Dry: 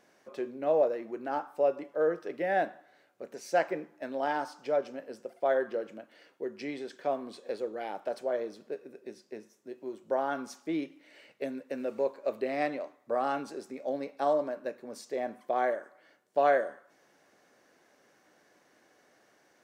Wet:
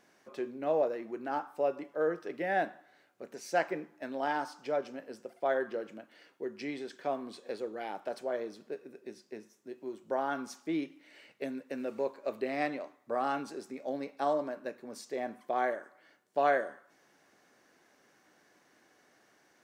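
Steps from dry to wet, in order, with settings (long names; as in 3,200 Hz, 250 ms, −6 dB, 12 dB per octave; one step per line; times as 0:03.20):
parametric band 550 Hz −4.5 dB 0.69 octaves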